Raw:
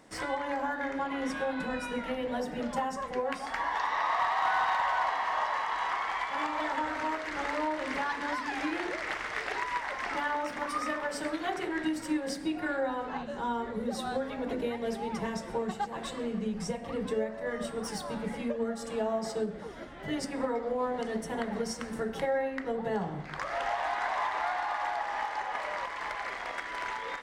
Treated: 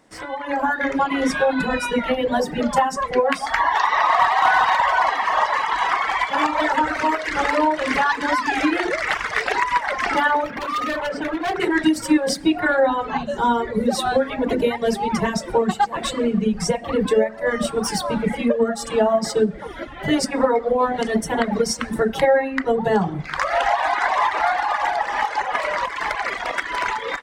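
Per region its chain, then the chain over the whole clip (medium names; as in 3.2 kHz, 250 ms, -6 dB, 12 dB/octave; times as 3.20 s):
10.44–11.60 s: low-pass 2.6 kHz + overload inside the chain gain 34 dB
whole clip: reverb removal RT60 1.8 s; level rider gain up to 15 dB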